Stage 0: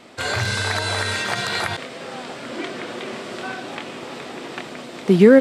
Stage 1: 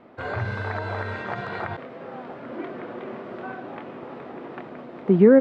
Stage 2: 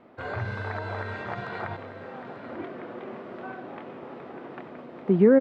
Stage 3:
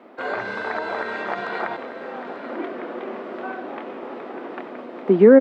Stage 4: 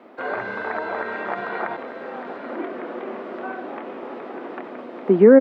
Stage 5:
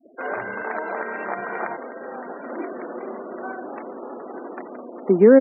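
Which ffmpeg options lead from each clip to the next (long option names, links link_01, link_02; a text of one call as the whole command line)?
ffmpeg -i in.wav -af "lowpass=1300,volume=-3dB" out.wav
ffmpeg -i in.wav -af "aecho=1:1:892:0.237,volume=-3.5dB" out.wav
ffmpeg -i in.wav -af "highpass=frequency=230:width=0.5412,highpass=frequency=230:width=1.3066,volume=7.5dB" out.wav
ffmpeg -i in.wav -filter_complex "[0:a]acrossover=split=2800[link_01][link_02];[link_02]acompressor=threshold=-56dB:ratio=4:attack=1:release=60[link_03];[link_01][link_03]amix=inputs=2:normalize=0" out.wav
ffmpeg -i in.wav -af "afftfilt=real='re*gte(hypot(re,im),0.02)':imag='im*gte(hypot(re,im),0.02)':win_size=1024:overlap=0.75,volume=-1dB" out.wav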